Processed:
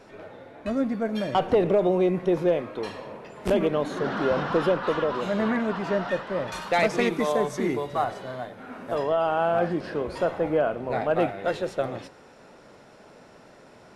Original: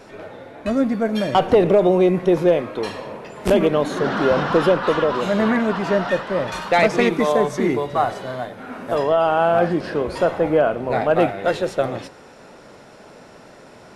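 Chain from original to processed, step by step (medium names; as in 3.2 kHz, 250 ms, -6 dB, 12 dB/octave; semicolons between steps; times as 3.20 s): treble shelf 5.6 kHz -4 dB, from 6.52 s +4.5 dB, from 8.04 s -2.5 dB; trim -6.5 dB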